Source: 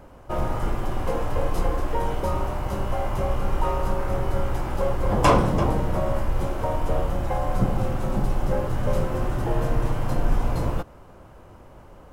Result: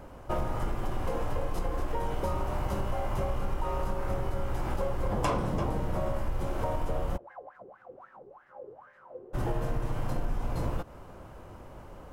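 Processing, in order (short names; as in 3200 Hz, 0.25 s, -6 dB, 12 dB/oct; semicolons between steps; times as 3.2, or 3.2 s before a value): compressor, threshold -26 dBFS, peak gain reduction 12.5 dB; 7.16–9.33 wah 5.5 Hz -> 1.4 Hz 400–1800 Hz, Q 11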